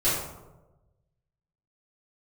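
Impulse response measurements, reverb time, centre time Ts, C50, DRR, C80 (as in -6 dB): 1.1 s, 65 ms, 0.5 dB, -13.0 dB, 4.0 dB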